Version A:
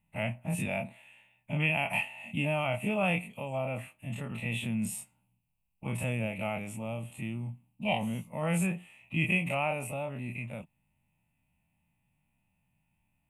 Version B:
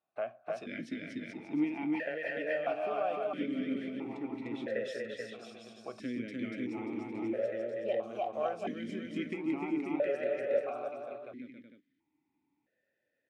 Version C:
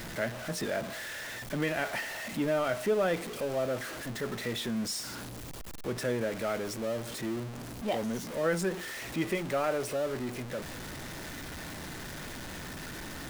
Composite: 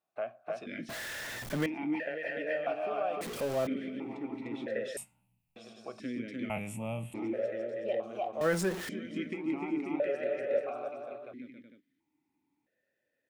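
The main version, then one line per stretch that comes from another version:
B
0.89–1.66 from C
3.21–3.67 from C
4.97–5.56 from A
6.5–7.14 from A
8.41–8.89 from C

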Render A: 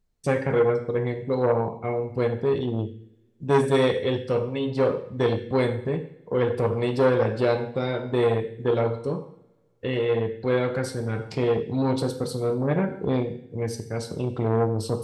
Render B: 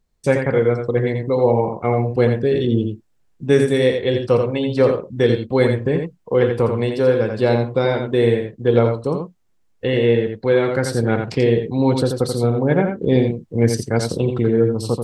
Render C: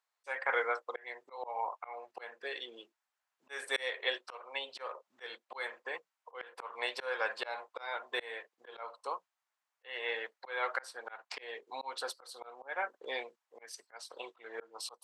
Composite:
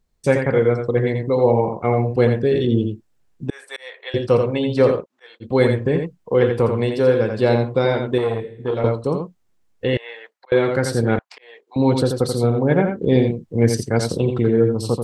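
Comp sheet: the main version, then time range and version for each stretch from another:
B
3.5–4.14 from C
5.03–5.43 from C, crossfade 0.06 s
8.18–8.84 from A
9.97–10.52 from C
11.19–11.76 from C

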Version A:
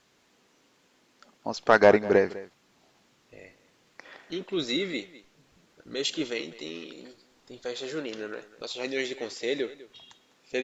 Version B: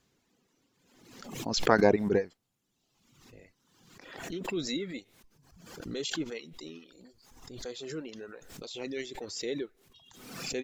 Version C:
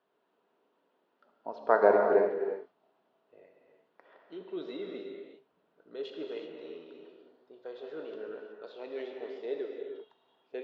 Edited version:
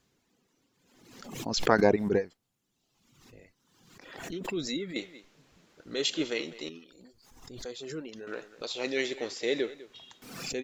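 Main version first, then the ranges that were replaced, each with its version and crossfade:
B
4.96–6.69 from A
8.27–10.22 from A
not used: C

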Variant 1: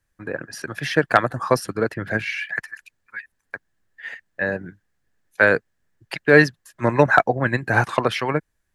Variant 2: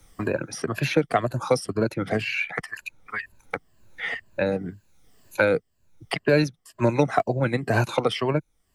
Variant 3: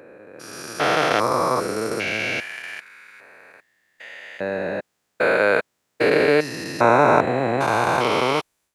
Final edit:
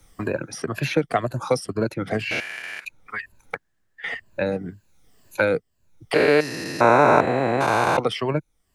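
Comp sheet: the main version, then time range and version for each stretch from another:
2
2.31–2.85 from 3
3.55–4.04 from 1
6.14–7.97 from 3

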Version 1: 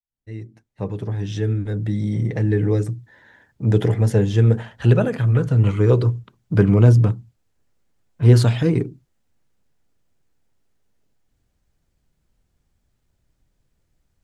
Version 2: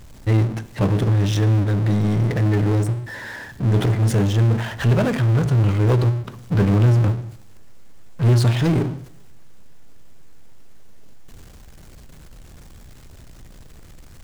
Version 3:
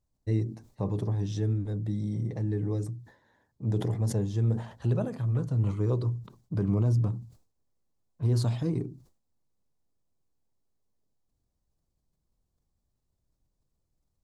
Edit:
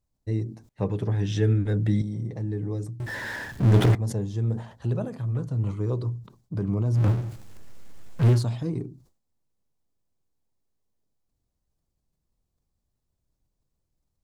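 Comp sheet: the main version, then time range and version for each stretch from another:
3
0.69–2.02 from 1
3–3.95 from 2
7.04–8.31 from 2, crossfade 0.24 s

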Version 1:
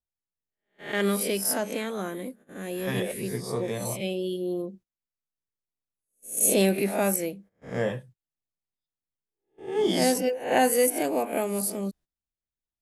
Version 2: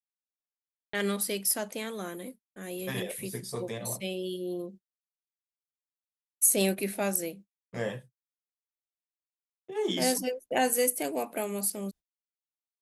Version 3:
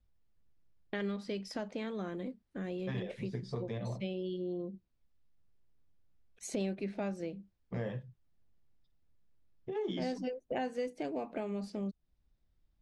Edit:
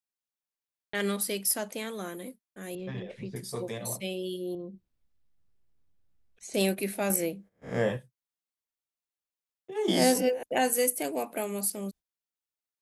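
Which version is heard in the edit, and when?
2
2.75–3.36 from 3
4.55–6.54 from 3
7.1–7.97 from 1
9.88–10.43 from 1

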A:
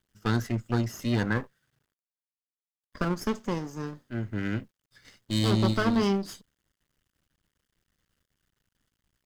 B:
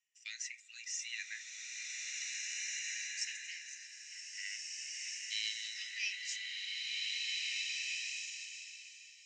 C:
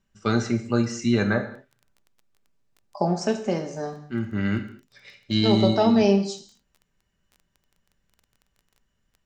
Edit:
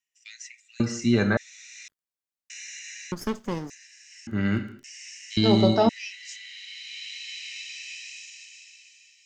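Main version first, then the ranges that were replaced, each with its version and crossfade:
B
0.8–1.37 from C
1.88–2.5 from A
3.12–3.7 from A
4.27–4.84 from C
5.37–5.89 from C

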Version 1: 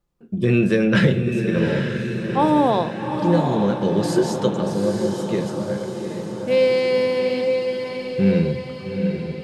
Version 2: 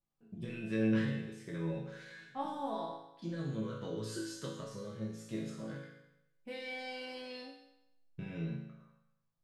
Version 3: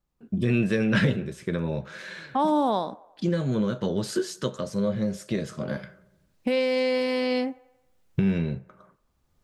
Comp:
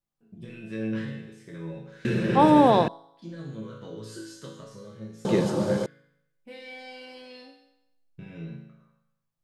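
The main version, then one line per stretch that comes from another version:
2
2.05–2.88 from 1
5.25–5.86 from 1
not used: 3

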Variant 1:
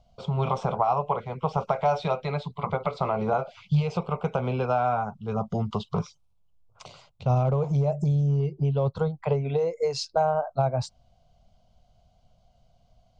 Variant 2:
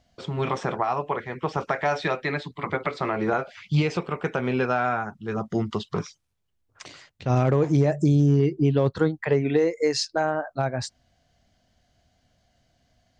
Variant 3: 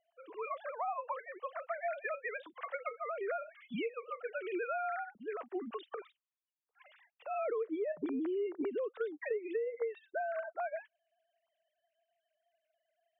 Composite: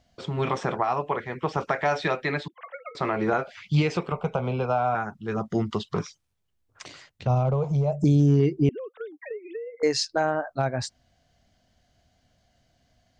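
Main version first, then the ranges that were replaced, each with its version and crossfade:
2
2.48–2.95 from 3
4.12–4.95 from 1
7.27–8.04 from 1
8.69–9.83 from 3

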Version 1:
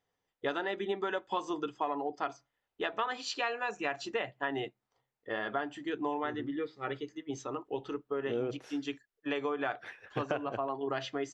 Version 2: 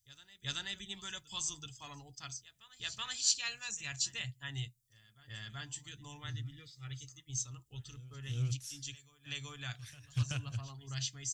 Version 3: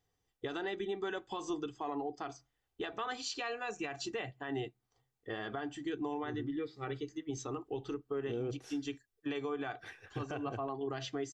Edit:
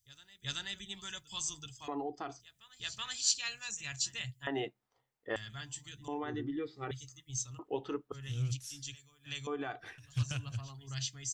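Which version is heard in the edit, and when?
2
1.88–2.4 from 3
4.47–5.36 from 1
6.08–6.91 from 3
7.59–8.12 from 1
9.47–9.98 from 3

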